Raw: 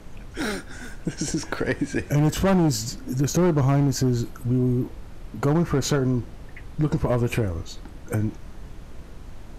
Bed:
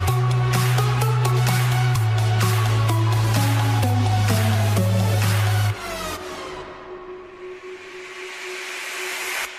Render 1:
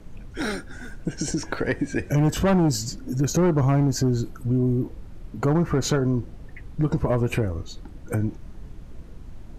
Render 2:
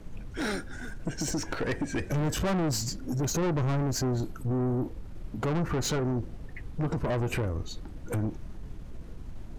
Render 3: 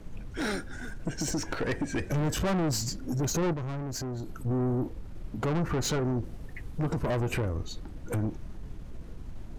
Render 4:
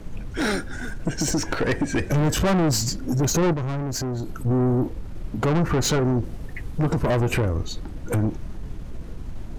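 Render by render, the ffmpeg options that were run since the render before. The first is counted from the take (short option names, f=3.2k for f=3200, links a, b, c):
-af "afftdn=nr=7:nf=-42"
-af "aeval=exprs='(tanh(17.8*val(0)+0.25)-tanh(0.25))/17.8':c=same"
-filter_complex "[0:a]asettb=1/sr,asplit=3[a][b][c];[a]atrim=end=3.534[d];[b]atrim=start=3.53:end=4.46,asetpts=PTS-STARTPTS,afade=t=in:d=0.004:c=qsin,afade=t=out:st=0.926:d=0.004:c=qsin,acompressor=threshold=-32dB:ratio=6:attack=3.2:release=140:knee=1:detection=peak[e];[c]atrim=start=4.456[f];[d][e]acrossfade=d=0.004:c1=hsin:c2=qsin[g];[g][f]acrossfade=d=0.004:c1=qsin:c2=hsin,asettb=1/sr,asplit=3[h][i][j];[h]atrim=end=6.244[k];[i]atrim=start=6.24:end=7.21,asetpts=PTS-STARTPTS,afade=t=in:d=0.004:c=qsin,afade=t=out:st=0.966:d=0.004:c=qsin,highshelf=f=8.4k:g=8.5[l];[j]atrim=start=7.206[m];[k][l]acrossfade=d=0.004:c1=hsin:c2=qsin[n];[n][m]acrossfade=d=0.004:c1=qsin:c2=hsin"
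-af "volume=7.5dB"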